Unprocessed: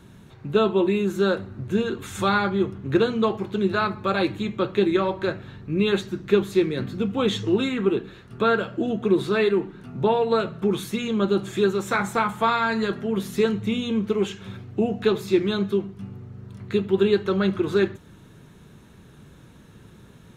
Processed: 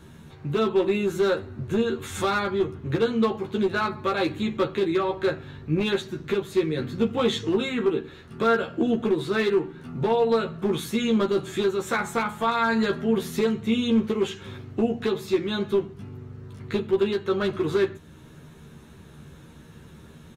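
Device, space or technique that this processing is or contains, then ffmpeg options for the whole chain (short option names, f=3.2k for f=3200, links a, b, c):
limiter into clipper: -filter_complex "[0:a]alimiter=limit=-14dB:level=0:latency=1:release=435,asoftclip=type=hard:threshold=-17.5dB,asplit=2[a][b];[b]adelay=13,volume=-3dB[c];[a][c]amix=inputs=2:normalize=0"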